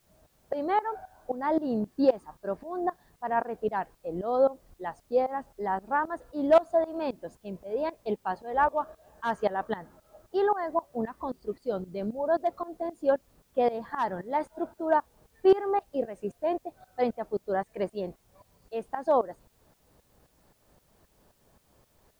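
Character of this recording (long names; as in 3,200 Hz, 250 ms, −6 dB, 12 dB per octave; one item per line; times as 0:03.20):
tremolo saw up 3.8 Hz, depth 90%
a quantiser's noise floor 12 bits, dither triangular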